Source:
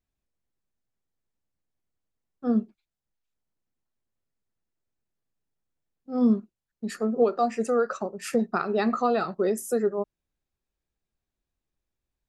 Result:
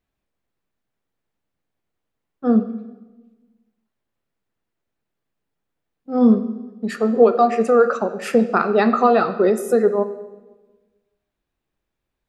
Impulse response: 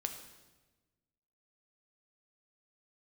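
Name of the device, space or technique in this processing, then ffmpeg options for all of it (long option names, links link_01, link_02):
filtered reverb send: -filter_complex "[0:a]asplit=2[link_01][link_02];[link_02]highpass=frequency=220:poles=1,lowpass=3900[link_03];[1:a]atrim=start_sample=2205[link_04];[link_03][link_04]afir=irnorm=-1:irlink=0,volume=3.5dB[link_05];[link_01][link_05]amix=inputs=2:normalize=0,volume=2dB"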